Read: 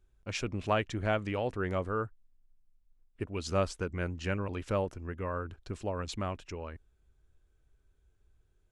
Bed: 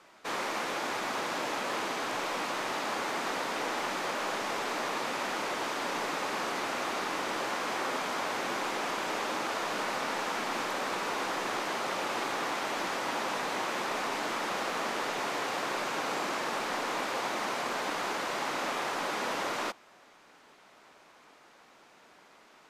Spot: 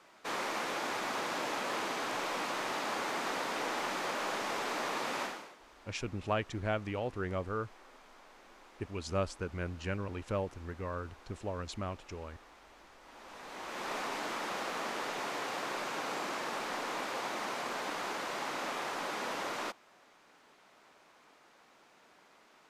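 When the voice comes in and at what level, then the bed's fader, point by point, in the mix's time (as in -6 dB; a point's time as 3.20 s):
5.60 s, -3.5 dB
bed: 5.23 s -2.5 dB
5.58 s -25 dB
12.98 s -25 dB
13.91 s -4.5 dB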